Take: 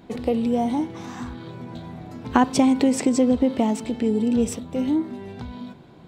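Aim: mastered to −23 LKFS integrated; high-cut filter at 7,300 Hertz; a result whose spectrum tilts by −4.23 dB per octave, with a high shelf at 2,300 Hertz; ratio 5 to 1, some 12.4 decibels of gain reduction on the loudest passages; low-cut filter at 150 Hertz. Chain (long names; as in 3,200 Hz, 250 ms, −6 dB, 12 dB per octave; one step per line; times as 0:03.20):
high-pass filter 150 Hz
low-pass filter 7,300 Hz
high-shelf EQ 2,300 Hz +8.5 dB
downward compressor 5 to 1, threshold −26 dBFS
level +8 dB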